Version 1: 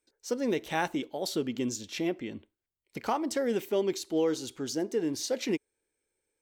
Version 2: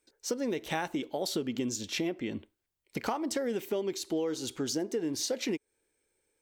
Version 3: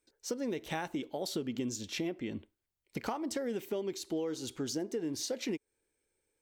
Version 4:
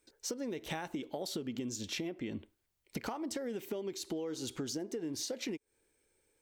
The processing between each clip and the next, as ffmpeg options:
-af "acompressor=threshold=-34dB:ratio=6,volume=5dB"
-af "lowshelf=f=200:g=4.5,volume=-4.5dB"
-af "acompressor=threshold=-43dB:ratio=4,volume=6dB"

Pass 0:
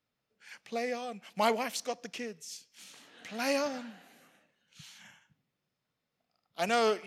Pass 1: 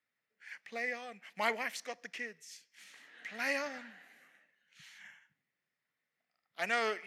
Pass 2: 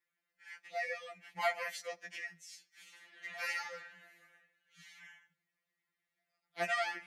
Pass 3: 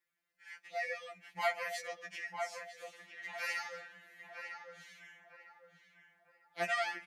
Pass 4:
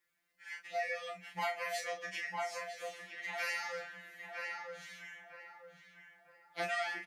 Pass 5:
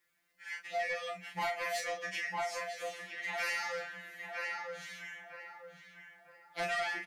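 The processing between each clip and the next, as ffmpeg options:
-af "highpass=f=210:p=1,equalizer=f=1.9k:w=2.1:g=15,volume=-8dB"
-af "afftfilt=real='re*2.83*eq(mod(b,8),0)':imag='im*2.83*eq(mod(b,8),0)':win_size=2048:overlap=0.75,volume=1dB"
-filter_complex "[0:a]asplit=2[a][b];[b]adelay=952,lowpass=f=1.5k:p=1,volume=-4dB,asplit=2[c][d];[d]adelay=952,lowpass=f=1.5k:p=1,volume=0.41,asplit=2[e][f];[f]adelay=952,lowpass=f=1.5k:p=1,volume=0.41,asplit=2[g][h];[h]adelay=952,lowpass=f=1.5k:p=1,volume=0.41,asplit=2[i][j];[j]adelay=952,lowpass=f=1.5k:p=1,volume=0.41[k];[a][c][e][g][i][k]amix=inputs=6:normalize=0"
-filter_complex "[0:a]acompressor=threshold=-40dB:ratio=3,asplit=2[a][b];[b]adelay=33,volume=-4.5dB[c];[a][c]amix=inputs=2:normalize=0,volume=4dB"
-af "asoftclip=type=tanh:threshold=-32dB,volume=4dB"

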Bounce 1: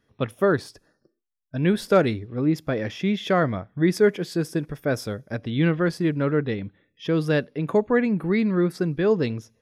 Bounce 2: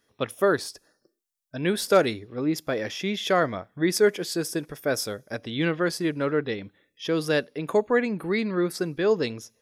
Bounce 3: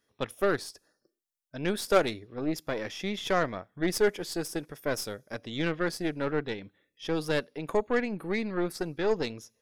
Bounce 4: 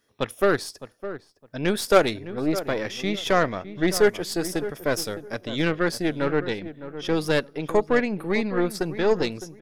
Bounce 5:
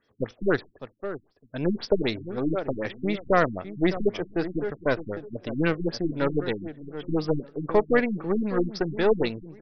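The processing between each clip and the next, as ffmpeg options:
-af "bass=f=250:g=-10,treble=f=4k:g=9"
-af "aeval=exprs='0.447*(cos(1*acos(clip(val(0)/0.447,-1,1)))-cos(1*PI/2))+0.0794*(cos(3*acos(clip(val(0)/0.447,-1,1)))-cos(3*PI/2))+0.0126*(cos(5*acos(clip(val(0)/0.447,-1,1)))-cos(5*PI/2))+0.02*(cos(8*acos(clip(val(0)/0.447,-1,1)))-cos(8*PI/2))':c=same,volume=-1.5dB"
-filter_complex "[0:a]asplit=2[a][b];[b]adelay=610,lowpass=f=1.3k:p=1,volume=-12dB,asplit=2[c][d];[d]adelay=610,lowpass=f=1.3k:p=1,volume=0.23,asplit=2[e][f];[f]adelay=610,lowpass=f=1.3k:p=1,volume=0.23[g];[a][c][e][g]amix=inputs=4:normalize=0,volume=6dB"
-af "afftfilt=real='re*lt(b*sr/1024,290*pow(6300/290,0.5+0.5*sin(2*PI*3.9*pts/sr)))':imag='im*lt(b*sr/1024,290*pow(6300/290,0.5+0.5*sin(2*PI*3.9*pts/sr)))':win_size=1024:overlap=0.75"

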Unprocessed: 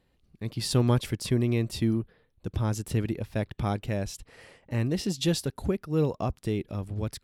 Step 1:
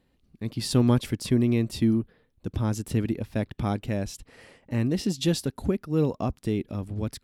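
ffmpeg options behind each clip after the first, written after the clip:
-af "equalizer=f=250:w=2.2:g=6"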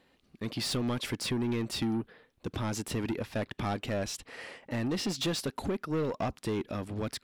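-filter_complex "[0:a]acompressor=threshold=-23dB:ratio=6,asplit=2[a][b];[b]highpass=f=720:p=1,volume=20dB,asoftclip=type=tanh:threshold=-18dB[c];[a][c]amix=inputs=2:normalize=0,lowpass=f=4.3k:p=1,volume=-6dB,volume=-5dB"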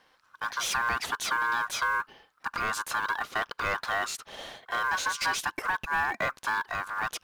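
-af "acrusher=bits=7:mode=log:mix=0:aa=0.000001,aeval=exprs='val(0)*sin(2*PI*1300*n/s)':c=same,volume=5.5dB"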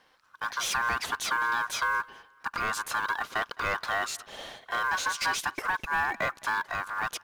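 -af "aecho=1:1:212|424:0.0631|0.0227"

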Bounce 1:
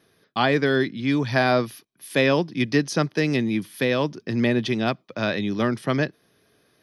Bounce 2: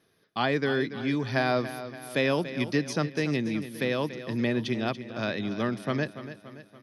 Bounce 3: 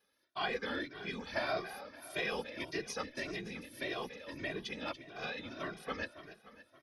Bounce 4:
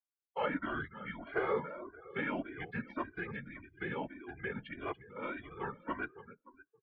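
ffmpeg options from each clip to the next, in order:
-af "aecho=1:1:286|572|858|1144|1430:0.237|0.123|0.0641|0.0333|0.0173,volume=-6dB"
-filter_complex "[0:a]highpass=f=700:p=1,afftfilt=real='hypot(re,im)*cos(2*PI*random(0))':imag='hypot(re,im)*sin(2*PI*random(1))':win_size=512:overlap=0.75,asplit=2[a][b];[b]adelay=2,afreqshift=1.7[c];[a][c]amix=inputs=2:normalize=1,volume=2.5dB"
-filter_complex "[0:a]afftdn=nr=33:nf=-50,acrossover=split=360 2200:gain=0.0708 1 0.141[a][b][c];[a][b][c]amix=inputs=3:normalize=0,highpass=f=250:t=q:w=0.5412,highpass=f=250:t=q:w=1.307,lowpass=f=3.5k:t=q:w=0.5176,lowpass=f=3.5k:t=q:w=0.7071,lowpass=f=3.5k:t=q:w=1.932,afreqshift=-210,volume=4dB"

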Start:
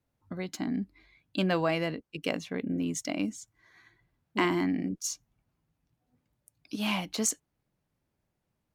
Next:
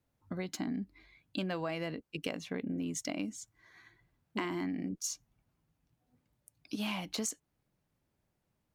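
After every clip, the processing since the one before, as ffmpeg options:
-af "acompressor=threshold=-33dB:ratio=6"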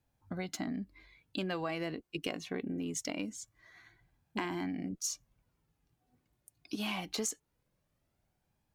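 -af "flanger=delay=1.2:depth=1.6:regen=54:speed=0.23:shape=sinusoidal,volume=5dB"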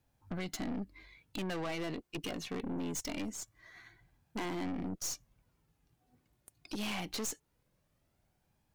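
-af "aeval=exprs='(tanh(100*val(0)+0.55)-tanh(0.55))/100':c=same,volume=5.5dB"

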